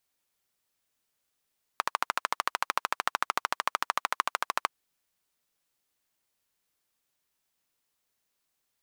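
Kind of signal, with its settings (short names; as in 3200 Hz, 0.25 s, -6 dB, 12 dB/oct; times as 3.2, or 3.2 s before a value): single-cylinder engine model, steady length 2.92 s, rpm 1600, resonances 1100 Hz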